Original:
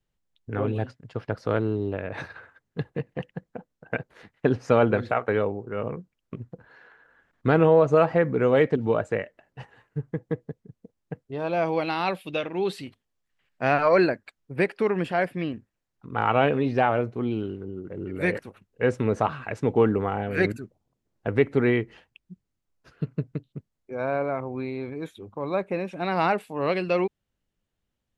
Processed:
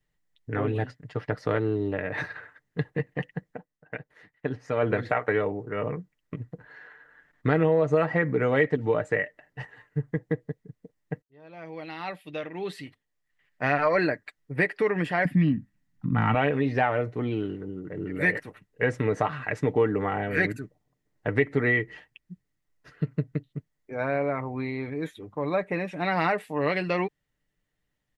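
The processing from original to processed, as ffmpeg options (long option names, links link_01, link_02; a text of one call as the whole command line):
ffmpeg -i in.wav -filter_complex "[0:a]asettb=1/sr,asplit=3[link_01][link_02][link_03];[link_01]atrim=end=15.254[link_04];[link_02]atrim=start=15.25:end=16.35,asetpts=PTS-STARTPTS,afade=type=in:duration=0.004:curve=qsin,afade=type=out:start_time=1.096:duration=0.004:curve=qsin,lowshelf=frequency=310:width_type=q:width=3:gain=10[link_05];[link_03]atrim=start=16.346[link_06];[link_04][link_05]acrossfade=duration=0.004:curve1=hsin:curve2=qsin[link_07];[link_07][link_06]acrossfade=duration=0.004:curve1=qsin:curve2=hsin,asplit=4[link_08][link_09][link_10][link_11];[link_08]atrim=end=3.65,asetpts=PTS-STARTPTS,afade=type=out:start_time=3.52:duration=0.13:silence=0.334965[link_12];[link_09]atrim=start=3.65:end=4.76,asetpts=PTS-STARTPTS,volume=-9.5dB[link_13];[link_10]atrim=start=4.76:end=11.22,asetpts=PTS-STARTPTS,afade=type=in:duration=0.13:silence=0.334965,afade=type=out:start_time=6.456:duration=0.004:curve=hsin[link_14];[link_11]atrim=start=11.22,asetpts=PTS-STARTPTS,afade=type=in:duration=2.83[link_15];[link_12][link_13][link_14][link_15]concat=n=4:v=0:a=1,equalizer=frequency=1900:width_type=o:width=0.23:gain=12.5,aecho=1:1:6.7:0.45,acompressor=threshold=-22dB:ratio=2" out.wav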